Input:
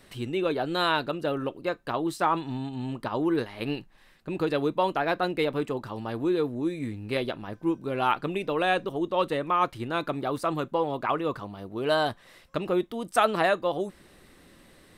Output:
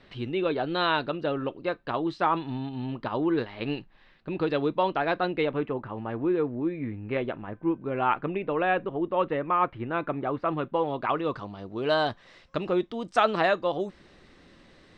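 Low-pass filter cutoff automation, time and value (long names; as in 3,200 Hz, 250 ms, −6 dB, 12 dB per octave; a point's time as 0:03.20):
low-pass filter 24 dB per octave
0:05.21 4,300 Hz
0:05.76 2,500 Hz
0:10.38 2,500 Hz
0:11.44 6,100 Hz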